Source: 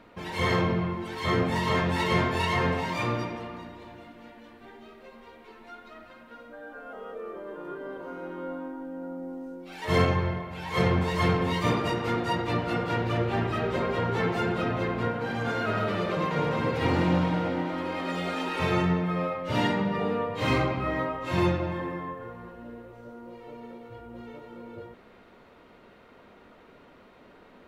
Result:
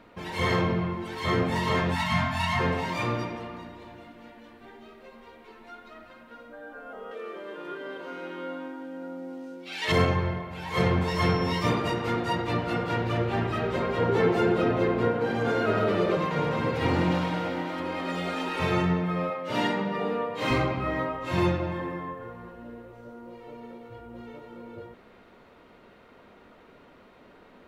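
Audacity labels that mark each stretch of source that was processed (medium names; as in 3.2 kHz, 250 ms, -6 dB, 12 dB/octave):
1.940000	2.590000	spectral selection erased 260–610 Hz
7.110000	9.920000	frequency weighting D
11.070000	11.660000	whistle 5.4 kHz -41 dBFS
14.000000	16.170000	peaking EQ 400 Hz +7.5 dB 1.2 oct
17.110000	17.800000	tilt EQ +1.5 dB/octave
19.300000	20.510000	high-pass 200 Hz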